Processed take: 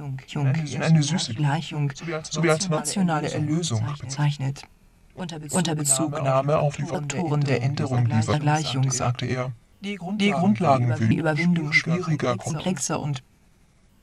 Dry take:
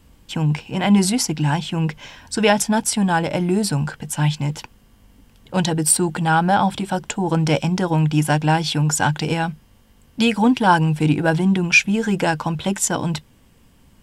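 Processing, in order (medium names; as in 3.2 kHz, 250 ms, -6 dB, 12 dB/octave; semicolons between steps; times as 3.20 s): sawtooth pitch modulation -6 st, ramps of 1389 ms; reverse echo 359 ms -9.5 dB; trim -3.5 dB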